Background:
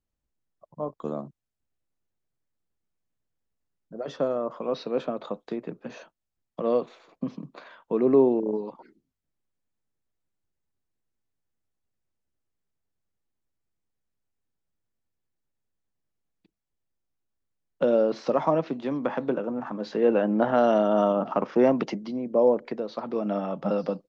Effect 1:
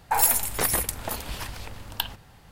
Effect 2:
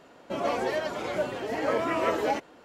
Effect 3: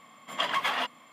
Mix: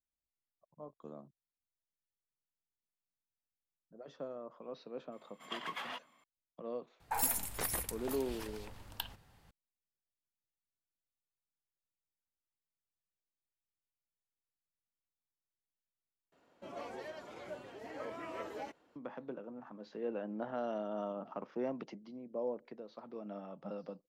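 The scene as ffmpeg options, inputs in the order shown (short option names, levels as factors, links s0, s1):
-filter_complex "[0:a]volume=0.133,asplit=2[s0][s1];[s0]atrim=end=16.324[s2];[2:a]atrim=end=2.64,asetpts=PTS-STARTPTS,volume=0.141[s3];[s1]atrim=start=18.956[s4];[3:a]atrim=end=1.12,asetpts=PTS-STARTPTS,volume=0.2,afade=t=in:d=0.004:c=hsin,afade=t=out:st=1.116:d=0.004:c=hsin,adelay=5120[s5];[1:a]atrim=end=2.51,asetpts=PTS-STARTPTS,volume=0.237,afade=t=in:d=0.004:c=hsin,afade=t=out:st=2.506:d=0.004:c=hsin,adelay=7000[s6];[s2][s3]acrossfade=d=0.004:c1=hsin:c2=hsin[s7];[s7][s4]acrossfade=d=0.004:c1=hsin:c2=hsin[s8];[s8][s5][s6]amix=inputs=3:normalize=0"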